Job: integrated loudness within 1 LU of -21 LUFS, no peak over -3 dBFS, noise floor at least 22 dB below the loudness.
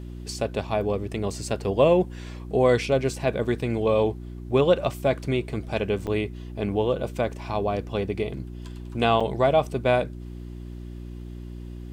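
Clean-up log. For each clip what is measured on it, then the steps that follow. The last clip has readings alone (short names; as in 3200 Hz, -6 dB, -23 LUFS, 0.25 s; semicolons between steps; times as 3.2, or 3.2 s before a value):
dropouts 2; longest dropout 5.5 ms; hum 60 Hz; harmonics up to 360 Hz; hum level -35 dBFS; loudness -25.0 LUFS; peak -7.0 dBFS; loudness target -21.0 LUFS
-> interpolate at 6.07/9.2, 5.5 ms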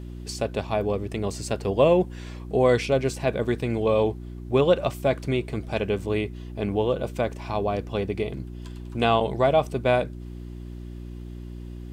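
dropouts 0; hum 60 Hz; harmonics up to 360 Hz; hum level -35 dBFS
-> de-hum 60 Hz, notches 6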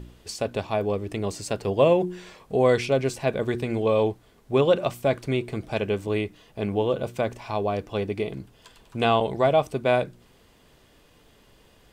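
hum none; loudness -25.0 LUFS; peak -7.5 dBFS; loudness target -21.0 LUFS
-> gain +4 dB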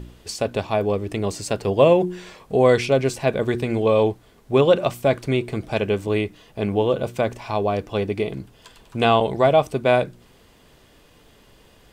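loudness -21.0 LUFS; peak -3.5 dBFS; noise floor -53 dBFS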